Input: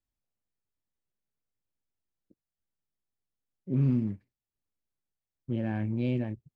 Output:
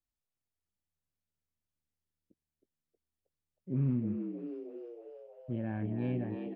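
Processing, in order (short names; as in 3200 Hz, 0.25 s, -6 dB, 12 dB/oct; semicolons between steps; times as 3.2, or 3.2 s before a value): frequency-shifting echo 0.316 s, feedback 60%, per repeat +76 Hz, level -7.5 dB; treble ducked by the level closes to 2300 Hz, closed at -28 dBFS; gain -5 dB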